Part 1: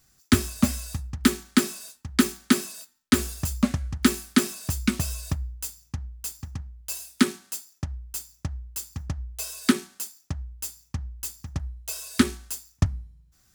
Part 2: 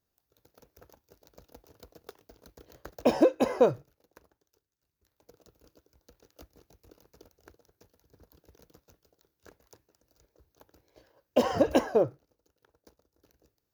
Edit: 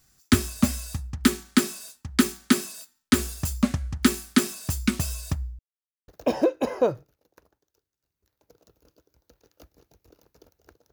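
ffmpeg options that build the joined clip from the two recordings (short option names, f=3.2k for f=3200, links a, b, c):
-filter_complex "[0:a]apad=whole_dur=10.92,atrim=end=10.92,asplit=2[a][b];[a]atrim=end=5.59,asetpts=PTS-STARTPTS,afade=t=out:st=5.586:d=0.004:c=hsin[c];[b]atrim=start=5.59:end=6.08,asetpts=PTS-STARTPTS,volume=0[d];[1:a]atrim=start=2.87:end=7.71,asetpts=PTS-STARTPTS,afade=t=in:d=0.004:c=hsin[e];[c][d][e]concat=n=3:v=0:a=1"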